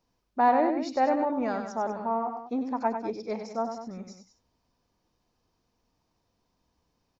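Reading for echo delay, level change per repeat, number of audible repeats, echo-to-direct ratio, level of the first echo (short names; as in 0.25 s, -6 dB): 97 ms, -4.5 dB, 2, -6.0 dB, -7.5 dB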